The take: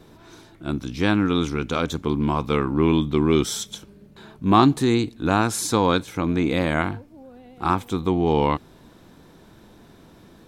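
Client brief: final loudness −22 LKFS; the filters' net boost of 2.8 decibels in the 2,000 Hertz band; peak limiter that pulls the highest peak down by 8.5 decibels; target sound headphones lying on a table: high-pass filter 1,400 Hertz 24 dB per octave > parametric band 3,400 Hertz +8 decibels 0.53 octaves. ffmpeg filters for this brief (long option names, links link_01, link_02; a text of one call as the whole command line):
ffmpeg -i in.wav -af "equalizer=frequency=2000:width_type=o:gain=3.5,alimiter=limit=-11dB:level=0:latency=1,highpass=frequency=1400:width=0.5412,highpass=frequency=1400:width=1.3066,equalizer=frequency=3400:width_type=o:width=0.53:gain=8,volume=7dB" out.wav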